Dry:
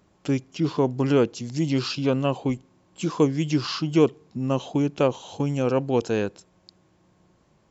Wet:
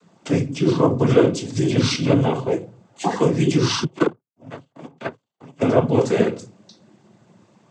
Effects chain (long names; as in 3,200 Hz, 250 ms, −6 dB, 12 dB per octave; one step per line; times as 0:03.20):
0:02.24–0:03.14: ring modulation 130 Hz → 640 Hz
in parallel at −1 dB: brickwall limiter −18.5 dBFS, peak gain reduction 11.5 dB
on the sum: rectangular room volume 170 cubic metres, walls furnished, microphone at 1.1 metres
0:03.84–0:05.61: power curve on the samples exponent 3
cochlear-implant simulation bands 16